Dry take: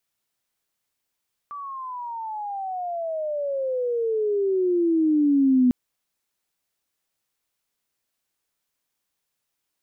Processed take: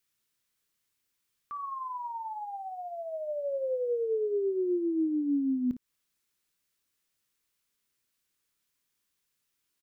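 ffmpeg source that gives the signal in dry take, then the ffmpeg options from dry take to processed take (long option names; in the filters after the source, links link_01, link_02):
-f lavfi -i "aevalsrc='pow(10,(-14+18*(t/4.2-1))/20)*sin(2*PI*1170*4.2/(-27*log(2)/12)*(exp(-27*log(2)/12*t/4.2)-1))':duration=4.2:sample_rate=44100"
-af "equalizer=frequency=710:width_type=o:width=0.77:gain=-10,acompressor=threshold=-28dB:ratio=6,aecho=1:1:25|56:0.133|0.251"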